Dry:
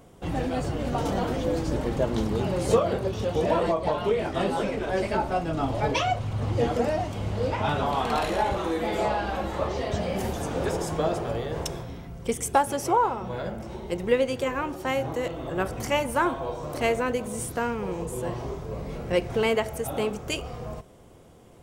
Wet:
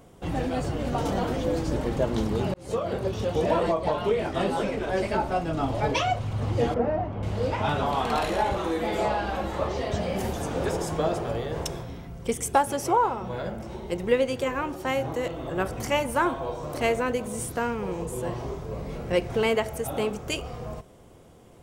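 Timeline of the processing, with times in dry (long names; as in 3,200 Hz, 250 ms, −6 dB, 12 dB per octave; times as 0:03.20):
0:02.54–0:03.06: fade in
0:06.74–0:07.23: low-pass filter 1,500 Hz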